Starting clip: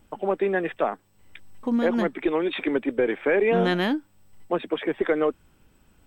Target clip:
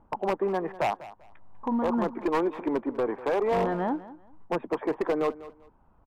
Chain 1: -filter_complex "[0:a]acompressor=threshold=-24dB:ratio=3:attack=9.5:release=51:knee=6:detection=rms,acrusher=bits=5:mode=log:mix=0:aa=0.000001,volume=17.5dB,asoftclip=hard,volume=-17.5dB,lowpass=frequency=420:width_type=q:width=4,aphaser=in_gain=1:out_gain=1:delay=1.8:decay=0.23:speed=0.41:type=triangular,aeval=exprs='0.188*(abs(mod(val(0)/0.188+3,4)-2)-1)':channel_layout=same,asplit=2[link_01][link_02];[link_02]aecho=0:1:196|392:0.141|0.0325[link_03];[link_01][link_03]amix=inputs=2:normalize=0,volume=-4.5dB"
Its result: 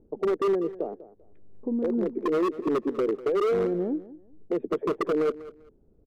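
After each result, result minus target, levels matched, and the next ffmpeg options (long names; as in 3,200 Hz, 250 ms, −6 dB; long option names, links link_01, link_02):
1,000 Hz band −6.5 dB; downward compressor: peak gain reduction +6 dB
-filter_complex "[0:a]acompressor=threshold=-24dB:ratio=3:attack=9.5:release=51:knee=6:detection=rms,acrusher=bits=5:mode=log:mix=0:aa=0.000001,volume=17.5dB,asoftclip=hard,volume=-17.5dB,lowpass=frequency=980:width_type=q:width=4,aphaser=in_gain=1:out_gain=1:delay=1.8:decay=0.23:speed=0.41:type=triangular,aeval=exprs='0.188*(abs(mod(val(0)/0.188+3,4)-2)-1)':channel_layout=same,asplit=2[link_01][link_02];[link_02]aecho=0:1:196|392:0.141|0.0325[link_03];[link_01][link_03]amix=inputs=2:normalize=0,volume=-4.5dB"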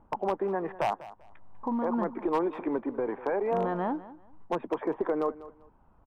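downward compressor: peak gain reduction +6 dB
-filter_complex "[0:a]acrusher=bits=5:mode=log:mix=0:aa=0.000001,volume=17.5dB,asoftclip=hard,volume=-17.5dB,lowpass=frequency=980:width_type=q:width=4,aphaser=in_gain=1:out_gain=1:delay=1.8:decay=0.23:speed=0.41:type=triangular,aeval=exprs='0.188*(abs(mod(val(0)/0.188+3,4)-2)-1)':channel_layout=same,asplit=2[link_01][link_02];[link_02]aecho=0:1:196|392:0.141|0.0325[link_03];[link_01][link_03]amix=inputs=2:normalize=0,volume=-4.5dB"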